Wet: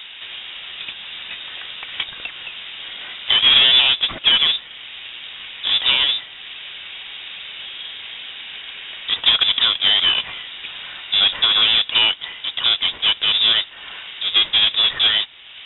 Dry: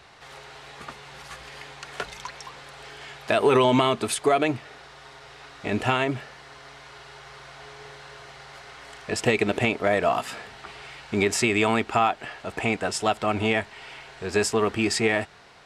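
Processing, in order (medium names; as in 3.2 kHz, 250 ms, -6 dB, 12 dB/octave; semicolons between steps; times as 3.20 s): square wave that keeps the level; treble shelf 2 kHz -8 dB; in parallel at -4.5 dB: hard clipper -19 dBFS, distortion -9 dB; on the sum: frequency inversion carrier 3.7 kHz; tape noise reduction on one side only encoder only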